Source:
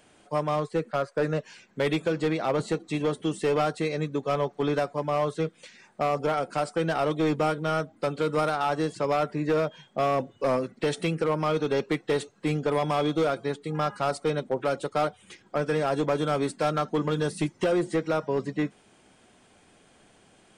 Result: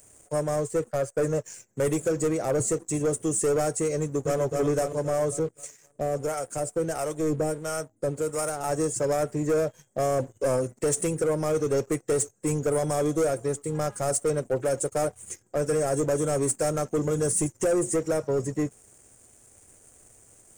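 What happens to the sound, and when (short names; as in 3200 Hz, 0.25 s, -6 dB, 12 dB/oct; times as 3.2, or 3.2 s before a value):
3.99–4.4 echo throw 0.26 s, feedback 55%, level -3.5 dB
5.39–8.64 harmonic tremolo 1.5 Hz, crossover 700 Hz
whole clip: EQ curve 120 Hz 0 dB, 170 Hz -14 dB, 530 Hz -6 dB, 1000 Hz -18 dB, 2000 Hz -15 dB, 3900 Hz -25 dB, 6800 Hz +8 dB; sample leveller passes 2; gain +3.5 dB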